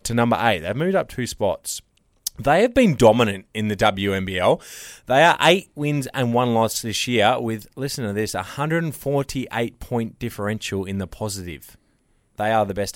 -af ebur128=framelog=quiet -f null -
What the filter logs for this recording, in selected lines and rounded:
Integrated loudness:
  I:         -21.1 LUFS
  Threshold: -31.5 LUFS
Loudness range:
  LRA:         8.0 LU
  Threshold: -41.1 LUFS
  LRA low:   -26.6 LUFS
  LRA high:  -18.6 LUFS